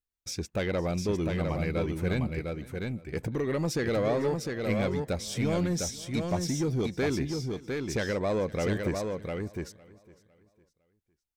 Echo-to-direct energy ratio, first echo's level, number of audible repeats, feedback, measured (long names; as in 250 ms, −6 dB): −4.5 dB, −21.0 dB, 5, repeats not evenly spaced